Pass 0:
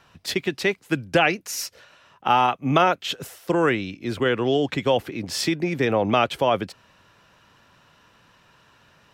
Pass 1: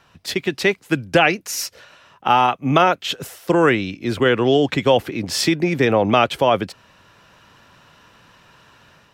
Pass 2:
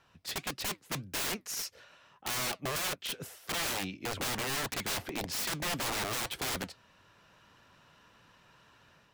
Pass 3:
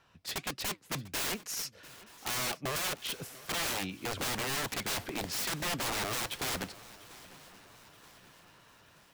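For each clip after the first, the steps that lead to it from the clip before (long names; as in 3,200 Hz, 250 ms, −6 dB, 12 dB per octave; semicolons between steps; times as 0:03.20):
automatic gain control gain up to 5 dB; level +1 dB
wrap-around overflow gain 17.5 dB; flanger 1.7 Hz, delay 2 ms, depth 4.6 ms, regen −79%; level −6.5 dB
feedback echo with a long and a short gap by turns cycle 927 ms, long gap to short 3 to 1, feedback 49%, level −20 dB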